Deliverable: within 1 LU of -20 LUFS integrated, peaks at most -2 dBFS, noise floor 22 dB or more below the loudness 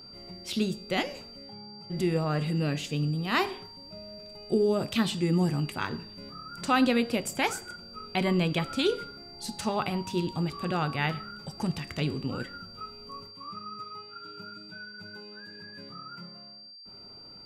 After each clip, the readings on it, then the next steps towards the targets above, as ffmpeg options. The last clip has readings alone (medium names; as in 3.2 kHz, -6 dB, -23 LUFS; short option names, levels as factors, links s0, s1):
steady tone 4.7 kHz; tone level -46 dBFS; loudness -29.5 LUFS; peak level -13.5 dBFS; loudness target -20.0 LUFS
-> -af "bandreject=f=4700:w=30"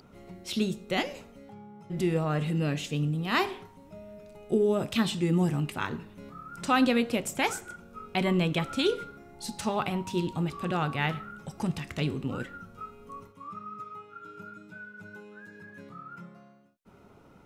steady tone not found; loudness -29.5 LUFS; peak level -13.5 dBFS; loudness target -20.0 LUFS
-> -af "volume=2.99"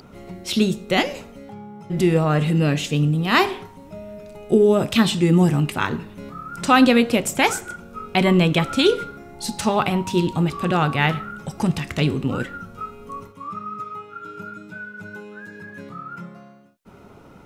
loudness -20.0 LUFS; peak level -4.0 dBFS; noise floor -46 dBFS